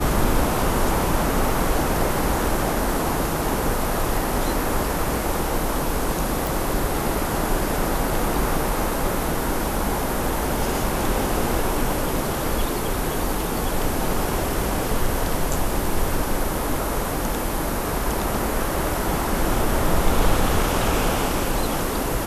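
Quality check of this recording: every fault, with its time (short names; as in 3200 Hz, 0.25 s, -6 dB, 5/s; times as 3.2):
6.47 pop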